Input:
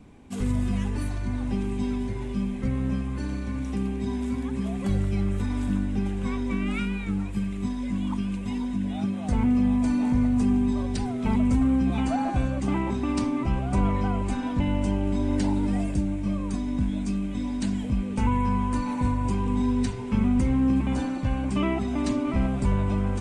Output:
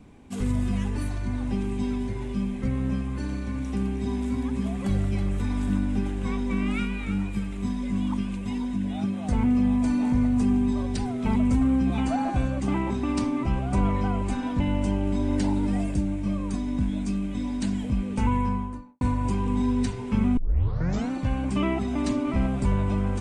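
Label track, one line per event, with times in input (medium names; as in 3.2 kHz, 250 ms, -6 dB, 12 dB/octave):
3.420000	8.360000	delay 323 ms -9.5 dB
18.320000	19.010000	studio fade out
20.370000	20.370000	tape start 0.74 s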